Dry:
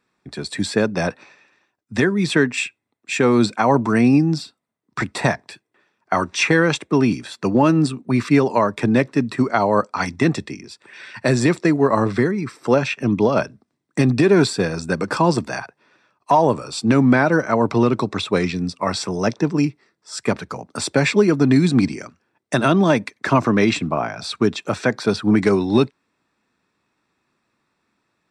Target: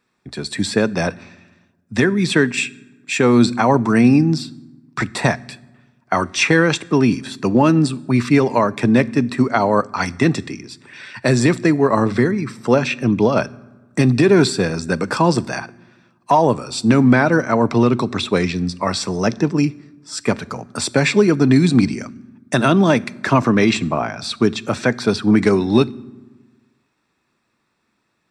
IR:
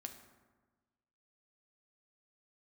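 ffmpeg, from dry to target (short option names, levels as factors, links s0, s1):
-filter_complex "[0:a]asplit=2[s0][s1];[s1]equalizer=f=710:w=0.65:g=-11[s2];[1:a]atrim=start_sample=2205[s3];[s2][s3]afir=irnorm=-1:irlink=0,volume=0.75[s4];[s0][s4]amix=inputs=2:normalize=0"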